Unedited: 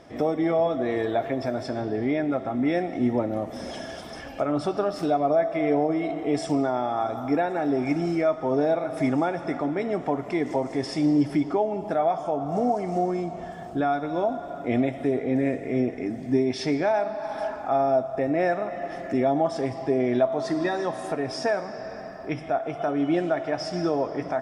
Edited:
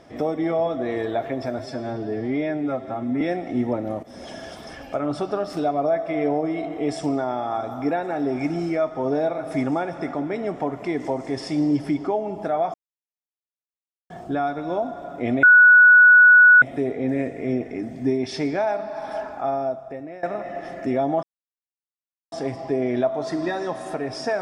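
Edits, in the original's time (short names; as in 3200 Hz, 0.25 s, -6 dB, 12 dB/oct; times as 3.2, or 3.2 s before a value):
1.59–2.67 stretch 1.5×
3.49–3.98 fade in equal-power, from -12.5 dB
12.2–13.56 mute
14.89 add tone 1470 Hz -7.5 dBFS 1.19 s
17.57–18.5 fade out, to -20.5 dB
19.5 insert silence 1.09 s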